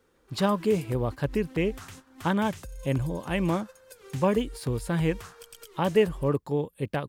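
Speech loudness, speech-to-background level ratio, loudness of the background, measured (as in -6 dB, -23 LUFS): -28.0 LUFS, 17.0 dB, -45.0 LUFS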